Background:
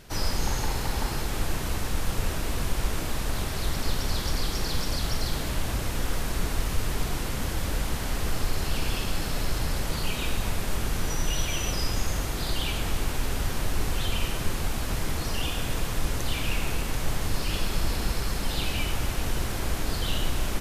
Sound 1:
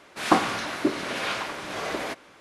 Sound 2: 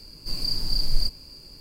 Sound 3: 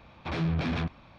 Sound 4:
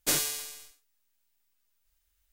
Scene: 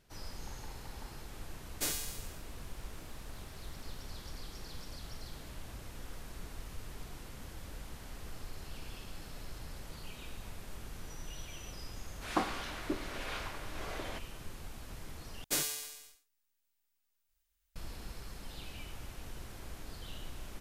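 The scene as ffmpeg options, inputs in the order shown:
ffmpeg -i bed.wav -i cue0.wav -i cue1.wav -i cue2.wav -i cue3.wav -filter_complex "[4:a]asplit=2[link_01][link_02];[0:a]volume=-18dB,asplit=2[link_03][link_04];[link_03]atrim=end=15.444[link_05];[link_02]atrim=end=2.32,asetpts=PTS-STARTPTS,volume=-6dB[link_06];[link_04]atrim=start=17.756[link_07];[link_01]atrim=end=2.32,asetpts=PTS-STARTPTS,volume=-8.5dB,afade=type=in:duration=0.004:curve=hsin,afade=type=out:start_time=2.316:duration=0.004:curve=hsin,adelay=1740[link_08];[1:a]atrim=end=2.4,asetpts=PTS-STARTPTS,volume=-12.5dB,afade=type=in:duration=0.004:curve=hsin,afade=type=out:start_time=2.396:duration=0.004:curve=hsin,adelay=12050[link_09];[link_05][link_06]acrossfade=duration=0.004:curve1=hsin:curve2=hsin[link_10];[link_10][link_07]acrossfade=duration=0.004:curve1=hsin:curve2=hsin[link_11];[link_11][link_08][link_09]amix=inputs=3:normalize=0" out.wav

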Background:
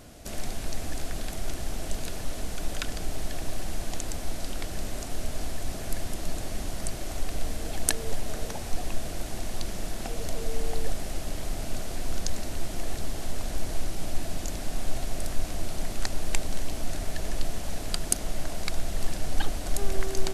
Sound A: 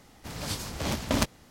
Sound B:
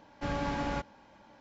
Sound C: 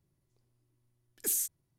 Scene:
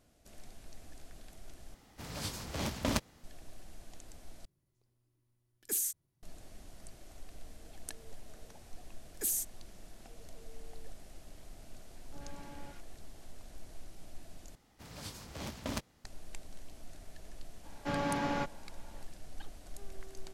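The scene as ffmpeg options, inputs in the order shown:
ffmpeg -i bed.wav -i cue0.wav -i cue1.wav -i cue2.wav -filter_complex "[1:a]asplit=2[link_01][link_02];[3:a]asplit=2[link_03][link_04];[2:a]asplit=2[link_05][link_06];[0:a]volume=-19.5dB[link_07];[link_05]acrossover=split=1200[link_08][link_09];[link_09]adelay=80[link_10];[link_08][link_10]amix=inputs=2:normalize=0[link_11];[link_06]highpass=110[link_12];[link_07]asplit=4[link_13][link_14][link_15][link_16];[link_13]atrim=end=1.744[link_17];[link_01]atrim=end=1.5,asetpts=PTS-STARTPTS,volume=-6dB[link_18];[link_14]atrim=start=3.236:end=4.454[link_19];[link_03]atrim=end=1.78,asetpts=PTS-STARTPTS,volume=-2.5dB[link_20];[link_15]atrim=start=6.226:end=14.554[link_21];[link_02]atrim=end=1.5,asetpts=PTS-STARTPTS,volume=-12dB[link_22];[link_16]atrim=start=16.046[link_23];[link_04]atrim=end=1.78,asetpts=PTS-STARTPTS,volume=-2.5dB,afade=type=in:duration=0.004:curve=hsin,afade=type=out:start_time=1.776:duration=0.004:curve=hsin,adelay=7970[link_24];[link_11]atrim=end=1.4,asetpts=PTS-STARTPTS,volume=-17dB,afade=type=in:duration=0.004:curve=hsin,afade=type=out:start_time=1.396:duration=0.004:curve=hsin,adelay=11910[link_25];[link_12]atrim=end=1.4,asetpts=PTS-STARTPTS,afade=type=in:duration=0.004:curve=hsin,afade=type=out:start_time=1.396:duration=0.004:curve=hsin,adelay=777924S[link_26];[link_17][link_18]acrossfade=duration=0.004:curve1=hsin:curve2=hsin[link_27];[link_27][link_19]acrossfade=duration=0.004:curve1=hsin:curve2=hsin[link_28];[link_28][link_20]acrossfade=duration=0.004:curve1=hsin:curve2=hsin[link_29];[link_29][link_21]acrossfade=duration=0.004:curve1=hsin:curve2=hsin[link_30];[link_30][link_22]acrossfade=duration=0.004:curve1=hsin:curve2=hsin[link_31];[link_31][link_23]acrossfade=duration=0.004:curve1=hsin:curve2=hsin[link_32];[link_32][link_24][link_25][link_26]amix=inputs=4:normalize=0" out.wav

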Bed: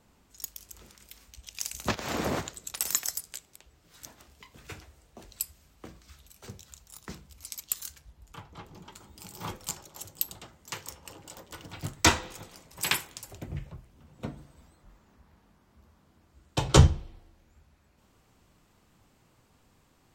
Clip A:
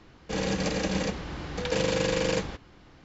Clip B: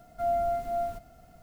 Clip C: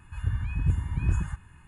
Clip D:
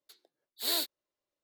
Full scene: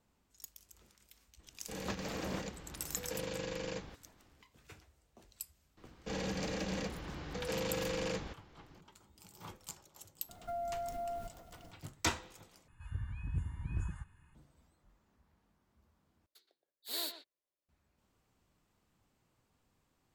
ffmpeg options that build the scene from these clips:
ffmpeg -i bed.wav -i cue0.wav -i cue1.wav -i cue2.wav -i cue3.wav -filter_complex "[1:a]asplit=2[link_01][link_02];[0:a]volume=-12dB[link_03];[link_02]asoftclip=type=tanh:threshold=-23dB[link_04];[2:a]acompressor=threshold=-34dB:ratio=6:attack=3.2:release=140:knee=1:detection=peak[link_05];[4:a]asplit=2[link_06][link_07];[link_07]adelay=120,highpass=300,lowpass=3400,asoftclip=type=hard:threshold=-25dB,volume=-9dB[link_08];[link_06][link_08]amix=inputs=2:normalize=0[link_09];[link_03]asplit=3[link_10][link_11][link_12];[link_10]atrim=end=12.684[link_13];[3:a]atrim=end=1.67,asetpts=PTS-STARTPTS,volume=-12dB[link_14];[link_11]atrim=start=14.346:end=16.264[link_15];[link_09]atrim=end=1.43,asetpts=PTS-STARTPTS,volume=-8dB[link_16];[link_12]atrim=start=17.686[link_17];[link_01]atrim=end=3.04,asetpts=PTS-STARTPTS,volume=-14dB,afade=type=in:duration=0.004:curve=hsin,afade=type=out:start_time=3.036:duration=0.004:curve=hsin,adelay=1390[link_18];[link_04]atrim=end=3.04,asetpts=PTS-STARTPTS,volume=-7.5dB,afade=type=in:duration=0.004:curve=hsin,afade=type=out:start_time=3.036:duration=0.004:curve=hsin,adelay=254457S[link_19];[link_05]atrim=end=1.42,asetpts=PTS-STARTPTS,volume=-3dB,afade=type=in:duration=0.004:curve=hsin,afade=type=out:start_time=1.416:duration=0.004:curve=hsin,adelay=10290[link_20];[link_13][link_14]acrossfade=duration=0.004:curve1=hsin:curve2=hsin[link_21];[link_21][link_15]acrossfade=duration=0.004:curve1=hsin:curve2=hsin[link_22];[link_22][link_16]acrossfade=duration=0.004:curve1=hsin:curve2=hsin[link_23];[link_23][link_17]acrossfade=duration=0.004:curve1=hsin:curve2=hsin[link_24];[link_24][link_18][link_19][link_20]amix=inputs=4:normalize=0" out.wav

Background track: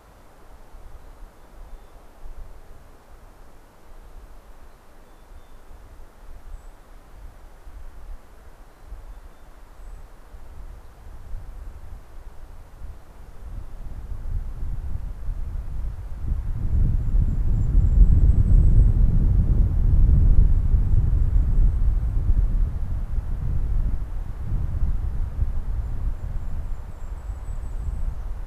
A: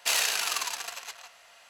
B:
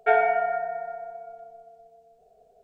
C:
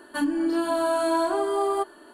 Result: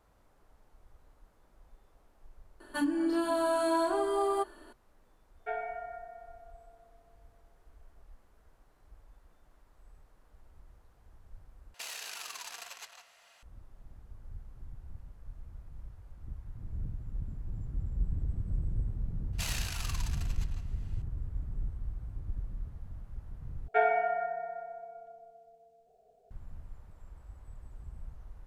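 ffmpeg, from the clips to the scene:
ffmpeg -i bed.wav -i cue0.wav -i cue1.wav -i cue2.wav -filter_complex "[2:a]asplit=2[link_01][link_02];[1:a]asplit=2[link_03][link_04];[0:a]volume=-17dB[link_05];[link_03]acompressor=threshold=-32dB:ratio=6:attack=3.2:release=140:knee=1:detection=peak[link_06];[link_05]asplit=3[link_07][link_08][link_09];[link_07]atrim=end=11.744[link_10];[link_06]atrim=end=1.69,asetpts=PTS-STARTPTS,volume=-6.5dB[link_11];[link_08]atrim=start=13.426:end=23.684[link_12];[link_02]atrim=end=2.63,asetpts=PTS-STARTPTS,volume=-6dB[link_13];[link_09]atrim=start=26.306[link_14];[3:a]atrim=end=2.13,asetpts=PTS-STARTPTS,volume=-5dB,afade=type=in:duration=0.004:curve=hsin,afade=type=out:start_time=2.126:duration=0.004:curve=hsin,adelay=2600[link_15];[link_01]atrim=end=2.63,asetpts=PTS-STARTPTS,volume=-16.5dB,afade=type=in:duration=0.004:curve=hsin,afade=type=out:start_time=2.626:duration=0.004:curve=hsin,adelay=5400[link_16];[link_04]atrim=end=1.69,asetpts=PTS-STARTPTS,volume=-12dB,afade=type=in:duration=0.004:curve=hsin,afade=type=out:start_time=1.686:duration=0.004:curve=hsin,adelay=19330[link_17];[link_10][link_11]acrossfade=duration=0.004:curve1=hsin:curve2=hsin[link_18];[link_18][link_12]acrossfade=duration=0.004:curve1=hsin:curve2=hsin[link_19];[link_19][link_13]acrossfade=duration=0.004:curve1=hsin:curve2=hsin[link_20];[link_20][link_14]acrossfade=duration=0.004:curve1=hsin:curve2=hsin[link_21];[link_21][link_15][link_16][link_17]amix=inputs=4:normalize=0" out.wav

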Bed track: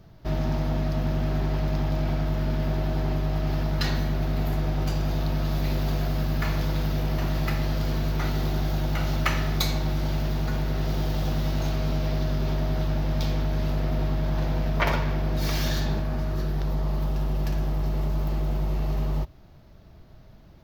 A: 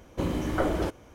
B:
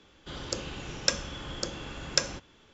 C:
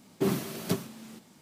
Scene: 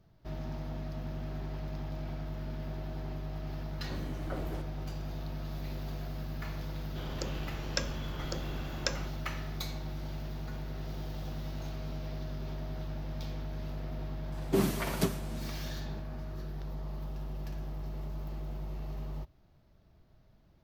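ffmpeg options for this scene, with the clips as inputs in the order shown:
ffmpeg -i bed.wav -i cue0.wav -i cue1.wav -i cue2.wav -filter_complex "[0:a]volume=-13dB[link_01];[2:a]lowpass=frequency=3300:poles=1[link_02];[3:a]aresample=32000,aresample=44100[link_03];[1:a]atrim=end=1.14,asetpts=PTS-STARTPTS,volume=-14.5dB,afade=type=in:duration=0.004:curve=hsin,afade=type=out:start_time=1.136:duration=0.004:curve=hsin,adelay=3720[link_04];[link_02]atrim=end=2.73,asetpts=PTS-STARTPTS,volume=-3.5dB,afade=type=in:duration=0.004:curve=hsin,afade=type=out:start_time=2.726:duration=0.004:curve=hsin,adelay=6690[link_05];[link_03]atrim=end=1.41,asetpts=PTS-STARTPTS,volume=-0.5dB,afade=type=in:duration=0.004:curve=hsin,afade=type=out:start_time=1.406:duration=0.004:curve=hsin,adelay=14320[link_06];[link_01][link_04][link_05][link_06]amix=inputs=4:normalize=0" out.wav

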